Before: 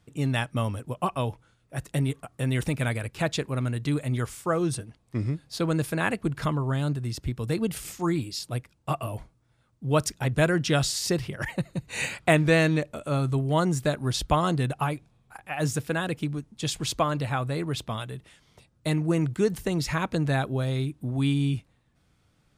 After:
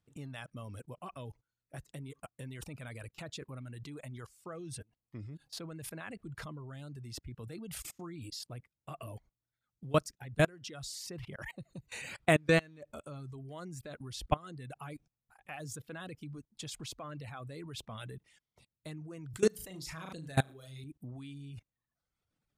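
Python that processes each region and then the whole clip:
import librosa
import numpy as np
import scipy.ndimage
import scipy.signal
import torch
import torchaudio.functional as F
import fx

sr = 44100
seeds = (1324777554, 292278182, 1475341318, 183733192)

y = fx.chain(x, sr, fx.high_shelf(hz=4100.0, db=10.0),
    fx.room_flutter(wall_m=6.4, rt60_s=0.42), at=(19.3, 20.84))
y = fx.dynamic_eq(y, sr, hz=890.0, q=7.9, threshold_db=-48.0, ratio=4.0, max_db=-6)
y = fx.level_steps(y, sr, step_db=20)
y = fx.dereverb_blind(y, sr, rt60_s=0.87)
y = y * librosa.db_to_amplitude(-2.5)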